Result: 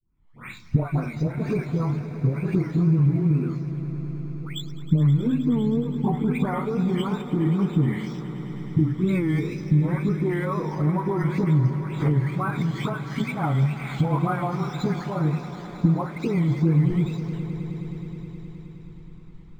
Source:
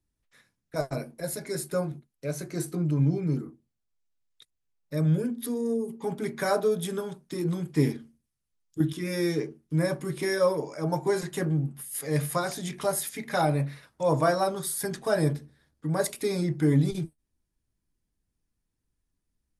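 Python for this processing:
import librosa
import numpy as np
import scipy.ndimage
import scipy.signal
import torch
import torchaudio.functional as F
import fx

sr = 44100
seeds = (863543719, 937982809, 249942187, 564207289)

y = fx.spec_delay(x, sr, highs='late', ms=388)
y = fx.recorder_agc(y, sr, target_db=-16.5, rise_db_per_s=60.0, max_gain_db=30)
y = fx.high_shelf(y, sr, hz=6200.0, db=5.5)
y = y + 0.68 * np.pad(y, (int(0.9 * sr / 1000.0), 0))[:len(y)]
y = fx.wow_flutter(y, sr, seeds[0], rate_hz=2.1, depth_cents=150.0)
y = fx.air_absorb(y, sr, metres=370.0)
y = fx.echo_swell(y, sr, ms=105, loudest=5, wet_db=-17.5)
y = np.interp(np.arange(len(y)), np.arange(len(y))[::4], y[::4])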